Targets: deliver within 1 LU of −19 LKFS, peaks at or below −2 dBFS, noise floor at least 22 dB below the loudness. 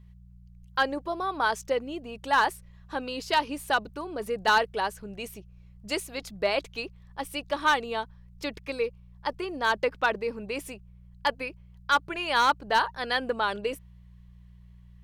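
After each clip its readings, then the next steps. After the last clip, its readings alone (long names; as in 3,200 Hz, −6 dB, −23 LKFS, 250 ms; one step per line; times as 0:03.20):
share of clipped samples 0.3%; peaks flattened at −15.0 dBFS; mains hum 60 Hz; hum harmonics up to 180 Hz; level of the hum −49 dBFS; integrated loudness −28.5 LKFS; sample peak −15.0 dBFS; target loudness −19.0 LKFS
→ clipped peaks rebuilt −15 dBFS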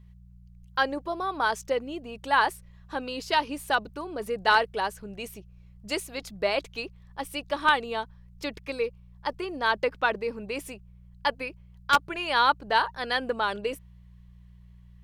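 share of clipped samples 0.0%; mains hum 60 Hz; hum harmonics up to 180 Hz; level of the hum −49 dBFS
→ hum removal 60 Hz, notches 3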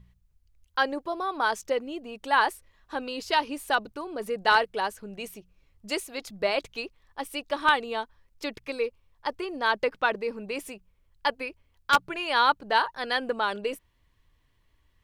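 mains hum none found; integrated loudness −28.0 LKFS; sample peak −6.0 dBFS; target loudness −19.0 LKFS
→ level +9 dB
brickwall limiter −2 dBFS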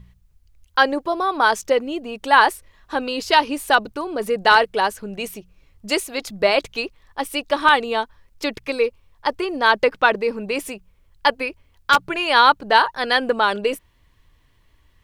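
integrated loudness −19.5 LKFS; sample peak −2.0 dBFS; background noise floor −59 dBFS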